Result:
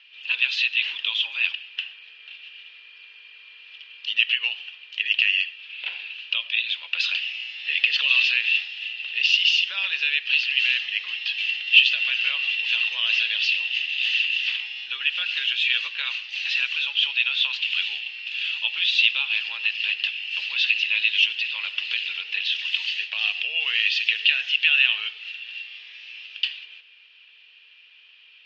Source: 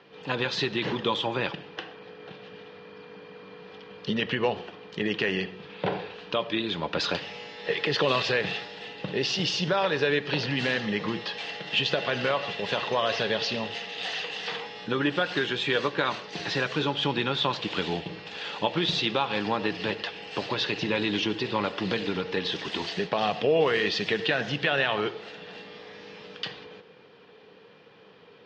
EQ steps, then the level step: resonant high-pass 2.7 kHz, resonance Q 6.8; distance through air 120 m; treble shelf 6.1 kHz +9.5 dB; -1.0 dB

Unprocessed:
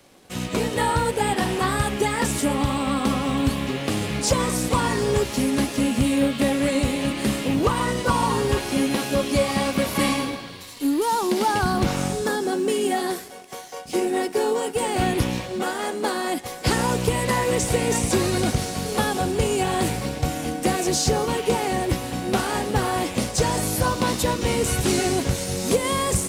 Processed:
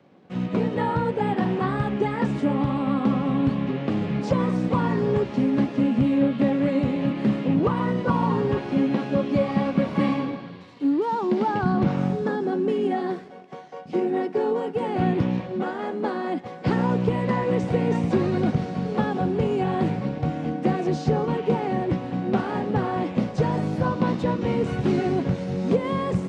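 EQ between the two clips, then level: high-pass 130 Hz 12 dB/octave; tape spacing loss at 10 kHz 37 dB; peaking EQ 170 Hz +7.5 dB 0.77 oct; 0.0 dB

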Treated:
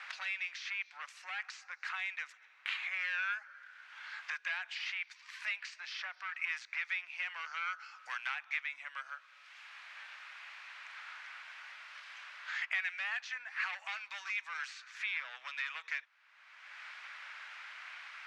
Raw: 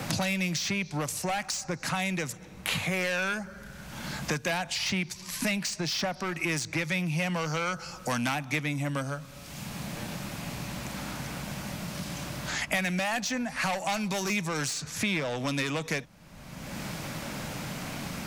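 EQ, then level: high-pass 1.5 kHz 24 dB/octave; low-pass 2.8 kHz 12 dB/octave; treble shelf 2.2 kHz -11.5 dB; +3.0 dB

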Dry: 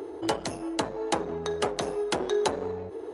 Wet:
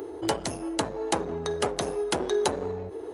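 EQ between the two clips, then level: bass shelf 120 Hz +6 dB; treble shelf 9.7 kHz +10 dB; 0.0 dB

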